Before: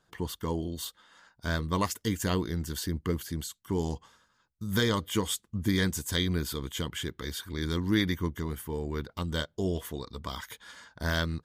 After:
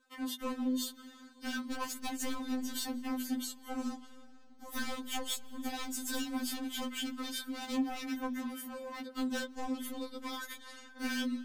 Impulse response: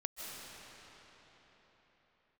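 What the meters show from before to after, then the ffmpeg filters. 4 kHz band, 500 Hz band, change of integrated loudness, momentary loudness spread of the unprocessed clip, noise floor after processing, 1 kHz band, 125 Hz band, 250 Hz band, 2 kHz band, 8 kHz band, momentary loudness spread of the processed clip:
-5.5 dB, -11.0 dB, -6.0 dB, 11 LU, -55 dBFS, -4.0 dB, under -30 dB, -3.5 dB, -6.0 dB, -3.0 dB, 8 LU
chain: -filter_complex "[0:a]lowshelf=f=140:t=q:w=3:g=-13,bandreject=f=50:t=h:w=6,bandreject=f=100:t=h:w=6,bandreject=f=150:t=h:w=6,bandreject=f=200:t=h:w=6,bandreject=f=250:t=h:w=6,bandreject=f=300:t=h:w=6,bandreject=f=350:t=h:w=6,bandreject=f=400:t=h:w=6,bandreject=f=450:t=h:w=6,acompressor=threshold=-27dB:ratio=5,aeval=exprs='0.0398*(abs(mod(val(0)/0.0398+3,4)-2)-1)':c=same,asplit=2[a][b];[1:a]atrim=start_sample=2205[c];[b][c]afir=irnorm=-1:irlink=0,volume=-17dB[d];[a][d]amix=inputs=2:normalize=0,afftfilt=real='re*3.46*eq(mod(b,12),0)':imag='im*3.46*eq(mod(b,12),0)':win_size=2048:overlap=0.75"

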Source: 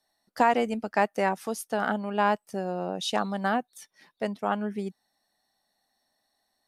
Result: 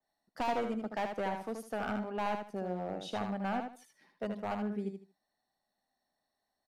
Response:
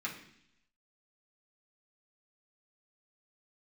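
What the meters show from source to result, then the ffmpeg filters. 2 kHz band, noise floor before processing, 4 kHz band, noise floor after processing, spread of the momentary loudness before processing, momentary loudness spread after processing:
-11.0 dB, -77 dBFS, -11.0 dB, -85 dBFS, 9 LU, 6 LU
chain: -filter_complex "[0:a]highshelf=f=2.2k:g=-9,acrossover=split=100[a][b];[b]volume=23.5dB,asoftclip=hard,volume=-23.5dB[c];[a][c]amix=inputs=2:normalize=0,aecho=1:1:77|154|231:0.501|0.12|0.0289,adynamicequalizer=threshold=0.00562:dfrequency=3000:dqfactor=0.7:tfrequency=3000:tqfactor=0.7:attack=5:release=100:ratio=0.375:range=2.5:mode=cutabove:tftype=highshelf,volume=-6dB"

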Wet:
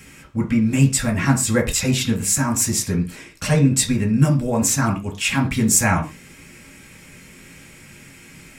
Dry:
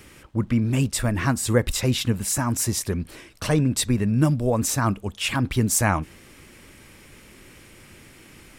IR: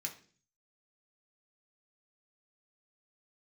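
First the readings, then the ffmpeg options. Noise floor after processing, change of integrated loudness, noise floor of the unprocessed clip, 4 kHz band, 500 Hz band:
-45 dBFS, +4.0 dB, -50 dBFS, +3.0 dB, +1.0 dB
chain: -filter_complex "[1:a]atrim=start_sample=2205,atrim=end_sample=6174[a];[0:a][a]afir=irnorm=-1:irlink=0,volume=5dB"

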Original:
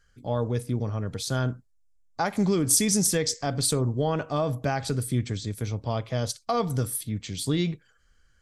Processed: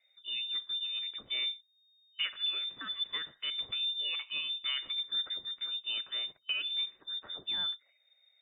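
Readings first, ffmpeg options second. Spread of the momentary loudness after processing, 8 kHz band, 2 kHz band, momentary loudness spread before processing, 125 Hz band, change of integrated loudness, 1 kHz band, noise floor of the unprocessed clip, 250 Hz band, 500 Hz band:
4 LU, under -40 dB, -3.0 dB, 10 LU, under -40 dB, -7.0 dB, -21.5 dB, -64 dBFS, under -30 dB, -31.0 dB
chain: -af "afftfilt=real='re*(1-between(b*sr/4096,200,650))':imag='im*(1-between(b*sr/4096,200,650))':win_size=4096:overlap=0.75,lowpass=f=3.1k:t=q:w=0.5098,lowpass=f=3.1k:t=q:w=0.6013,lowpass=f=3.1k:t=q:w=0.9,lowpass=f=3.1k:t=q:w=2.563,afreqshift=-3700,volume=-6.5dB"

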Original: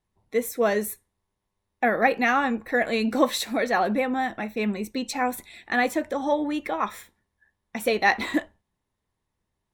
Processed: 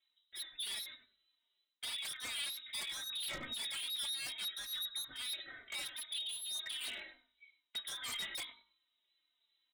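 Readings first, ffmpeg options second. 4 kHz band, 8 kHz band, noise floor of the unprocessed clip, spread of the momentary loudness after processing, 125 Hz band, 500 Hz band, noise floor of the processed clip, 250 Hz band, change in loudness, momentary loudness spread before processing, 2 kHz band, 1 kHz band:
-0.5 dB, -4.5 dB, -81 dBFS, 8 LU, -23.5 dB, -35.5 dB, -84 dBFS, -36.0 dB, -15.0 dB, 8 LU, -19.0 dB, -30.5 dB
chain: -filter_complex "[0:a]lowpass=f=3.4k:t=q:w=0.5098,lowpass=f=3.4k:t=q:w=0.6013,lowpass=f=3.4k:t=q:w=0.9,lowpass=f=3.4k:t=q:w=2.563,afreqshift=-4000,aecho=1:1:3.2:0.46,areverse,acompressor=threshold=-35dB:ratio=6,areverse,bandreject=f=51.95:t=h:w=4,bandreject=f=103.9:t=h:w=4,bandreject=f=155.85:t=h:w=4,bandreject=f=207.8:t=h:w=4,bandreject=f=259.75:t=h:w=4,bandreject=f=311.7:t=h:w=4,bandreject=f=363.65:t=h:w=4,bandreject=f=415.6:t=h:w=4,bandreject=f=467.55:t=h:w=4,bandreject=f=519.5:t=h:w=4,bandreject=f=571.45:t=h:w=4,bandreject=f=623.4:t=h:w=4,bandreject=f=675.35:t=h:w=4,bandreject=f=727.3:t=h:w=4,bandreject=f=779.25:t=h:w=4,bandreject=f=831.2:t=h:w=4,bandreject=f=883.15:t=h:w=4,bandreject=f=935.1:t=h:w=4,bandreject=f=987.05:t=h:w=4,bandreject=f=1.039k:t=h:w=4,bandreject=f=1.09095k:t=h:w=4,bandreject=f=1.1429k:t=h:w=4,bandreject=f=1.19485k:t=h:w=4,bandreject=f=1.2468k:t=h:w=4,bandreject=f=1.29875k:t=h:w=4,bandreject=f=1.3507k:t=h:w=4,bandreject=f=1.40265k:t=h:w=4,bandreject=f=1.4546k:t=h:w=4,bandreject=f=1.50655k:t=h:w=4,bandreject=f=1.5585k:t=h:w=4,bandreject=f=1.61045k:t=h:w=4,bandreject=f=1.6624k:t=h:w=4,bandreject=f=1.71435k:t=h:w=4,bandreject=f=1.7663k:t=h:w=4,bandreject=f=1.81825k:t=h:w=4,bandreject=f=1.8702k:t=h:w=4,bandreject=f=1.92215k:t=h:w=4,asplit=2[a][b];[b]adelay=97,lowpass=f=1.5k:p=1,volume=-7.5dB,asplit=2[c][d];[d]adelay=97,lowpass=f=1.5k:p=1,volume=0.2,asplit=2[e][f];[f]adelay=97,lowpass=f=1.5k:p=1,volume=0.2[g];[c][e][g]amix=inputs=3:normalize=0[h];[a][h]amix=inputs=2:normalize=0,aeval=exprs='0.0158*(abs(mod(val(0)/0.0158+3,4)-2)-1)':c=same,asplit=2[i][j];[j]adelay=3.2,afreqshift=-2.4[k];[i][k]amix=inputs=2:normalize=1,volume=2.5dB"

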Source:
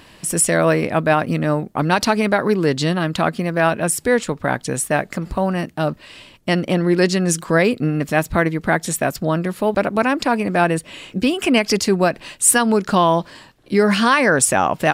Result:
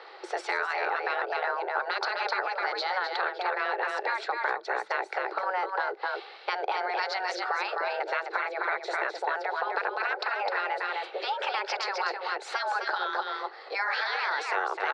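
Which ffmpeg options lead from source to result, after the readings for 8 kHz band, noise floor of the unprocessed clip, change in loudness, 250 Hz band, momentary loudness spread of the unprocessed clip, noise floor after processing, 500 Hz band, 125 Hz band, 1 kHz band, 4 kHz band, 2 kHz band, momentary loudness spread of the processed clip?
-30.5 dB, -48 dBFS, -12.0 dB, -31.0 dB, 7 LU, -47 dBFS, -15.0 dB, under -40 dB, -7.0 dB, -9.0 dB, -7.0 dB, 3 LU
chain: -filter_complex "[0:a]afftfilt=real='re*lt(hypot(re,im),0.447)':imag='im*lt(hypot(re,im),0.447)':win_size=1024:overlap=0.75,highpass=f=190:w=0.5412,highpass=f=190:w=1.3066,equalizer=f=650:t=q:w=4:g=9,equalizer=f=1.3k:t=q:w=4:g=8,equalizer=f=2.8k:t=q:w=4:g=-9,equalizer=f=4k:t=q:w=4:g=7,lowpass=f=4.3k:w=0.5412,lowpass=f=4.3k:w=1.3066,asplit=2[a][b];[b]aecho=0:1:257:0.562[c];[a][c]amix=inputs=2:normalize=0,acompressor=threshold=-24dB:ratio=5,afreqshift=190,aemphasis=mode=reproduction:type=cd,volume=-1.5dB"

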